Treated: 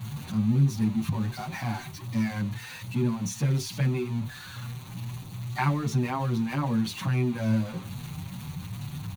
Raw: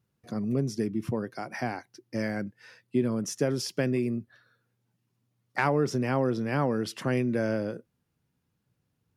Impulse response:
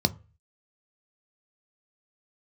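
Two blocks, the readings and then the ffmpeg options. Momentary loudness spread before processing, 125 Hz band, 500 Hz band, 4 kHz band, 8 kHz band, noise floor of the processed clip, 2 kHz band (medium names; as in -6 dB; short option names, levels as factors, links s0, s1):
10 LU, +7.5 dB, -8.0 dB, +2.0 dB, +1.5 dB, -42 dBFS, -2.0 dB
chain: -filter_complex "[0:a]aeval=exprs='val(0)+0.5*0.0211*sgn(val(0))':c=same,asplit=2[s0][s1];[1:a]atrim=start_sample=2205,atrim=end_sample=3528[s2];[s1][s2]afir=irnorm=-1:irlink=0,volume=0.2[s3];[s0][s3]amix=inputs=2:normalize=0,asplit=2[s4][s5];[s5]adelay=6.8,afreqshift=2.4[s6];[s4][s6]amix=inputs=2:normalize=1"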